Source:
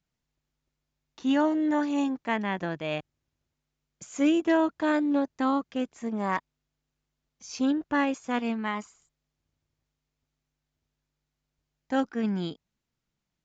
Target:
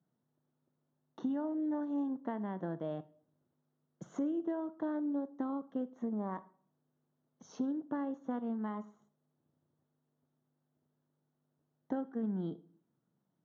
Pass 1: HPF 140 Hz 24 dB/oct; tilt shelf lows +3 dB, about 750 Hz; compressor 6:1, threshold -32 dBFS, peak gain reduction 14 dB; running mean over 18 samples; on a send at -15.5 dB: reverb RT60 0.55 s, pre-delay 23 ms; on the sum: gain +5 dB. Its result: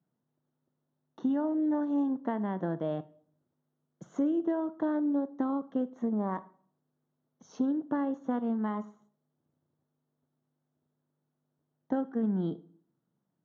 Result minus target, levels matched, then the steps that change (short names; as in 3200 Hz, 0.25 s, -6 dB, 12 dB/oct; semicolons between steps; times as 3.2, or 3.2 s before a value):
compressor: peak gain reduction -6 dB
change: compressor 6:1, threshold -39.5 dBFS, peak gain reduction 20 dB